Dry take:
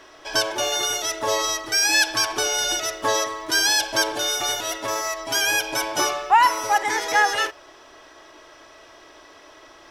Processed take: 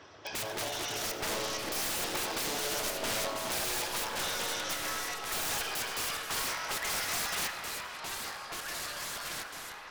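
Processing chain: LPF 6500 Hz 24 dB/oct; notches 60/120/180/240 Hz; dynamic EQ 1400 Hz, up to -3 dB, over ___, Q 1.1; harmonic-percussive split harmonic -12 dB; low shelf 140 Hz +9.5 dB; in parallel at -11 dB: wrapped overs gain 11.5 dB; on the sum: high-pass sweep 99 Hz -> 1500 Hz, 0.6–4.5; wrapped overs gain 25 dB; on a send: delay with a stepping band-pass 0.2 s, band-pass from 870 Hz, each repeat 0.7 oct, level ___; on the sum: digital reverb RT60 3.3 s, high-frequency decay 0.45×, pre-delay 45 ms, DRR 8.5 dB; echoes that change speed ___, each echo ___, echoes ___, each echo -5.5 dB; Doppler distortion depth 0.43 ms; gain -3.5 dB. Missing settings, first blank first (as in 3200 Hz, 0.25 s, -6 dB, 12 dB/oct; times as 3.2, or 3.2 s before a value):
-35 dBFS, -6.5 dB, 0.543 s, -3 st, 2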